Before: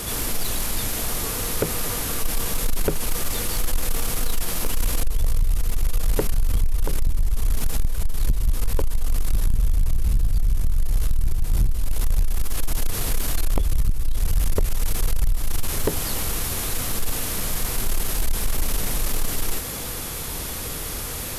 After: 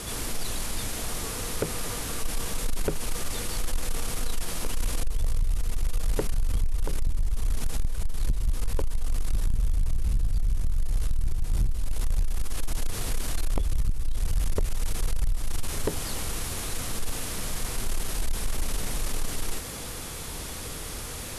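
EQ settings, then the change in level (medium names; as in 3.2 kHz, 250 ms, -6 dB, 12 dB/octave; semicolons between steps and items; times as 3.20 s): low-pass 11 kHz 24 dB/octave; -5.0 dB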